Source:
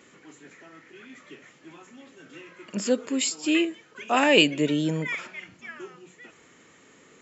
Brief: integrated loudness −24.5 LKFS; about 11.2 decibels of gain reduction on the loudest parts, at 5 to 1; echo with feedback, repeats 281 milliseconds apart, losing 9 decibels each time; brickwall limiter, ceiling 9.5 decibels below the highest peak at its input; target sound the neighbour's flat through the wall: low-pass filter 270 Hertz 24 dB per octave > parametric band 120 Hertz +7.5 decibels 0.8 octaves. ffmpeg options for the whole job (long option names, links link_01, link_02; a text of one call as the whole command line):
ffmpeg -i in.wav -af "acompressor=threshold=-25dB:ratio=5,alimiter=limit=-24dB:level=0:latency=1,lowpass=frequency=270:width=0.5412,lowpass=frequency=270:width=1.3066,equalizer=frequency=120:width_type=o:width=0.8:gain=7.5,aecho=1:1:281|562|843|1124:0.355|0.124|0.0435|0.0152,volume=13.5dB" out.wav